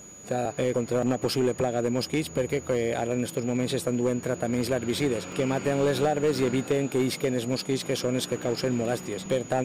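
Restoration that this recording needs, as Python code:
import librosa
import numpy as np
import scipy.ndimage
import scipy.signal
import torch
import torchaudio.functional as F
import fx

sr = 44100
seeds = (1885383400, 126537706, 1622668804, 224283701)

y = fx.fix_declip(x, sr, threshold_db=-18.0)
y = fx.notch(y, sr, hz=6800.0, q=30.0)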